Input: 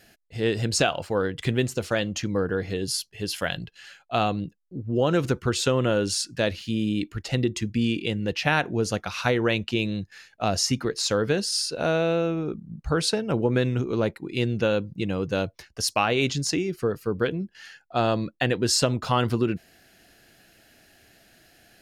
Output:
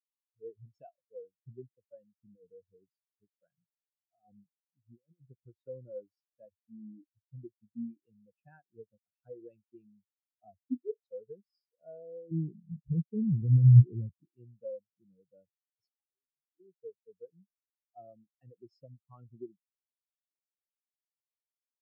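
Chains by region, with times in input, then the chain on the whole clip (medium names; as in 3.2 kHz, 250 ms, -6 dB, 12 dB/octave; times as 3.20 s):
2.11–5.25 s: distance through air 91 m + compressor with a negative ratio -25 dBFS, ratio -0.5 + loudspeaker Doppler distortion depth 0.2 ms
10.59–11.03 s: formants replaced by sine waves + flutter echo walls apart 4.9 m, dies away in 0.27 s
12.31–14.25 s: companding laws mixed up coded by mu + tilt EQ -4.5 dB/octave + compression 2.5:1, threshold -17 dBFS
15.91–16.60 s: four-pole ladder low-pass 1.9 kHz, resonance 40% + compression 1.5:1, threshold -47 dBFS
whole clip: high-pass 79 Hz 24 dB/octave; spectral contrast expander 4:1; trim -4 dB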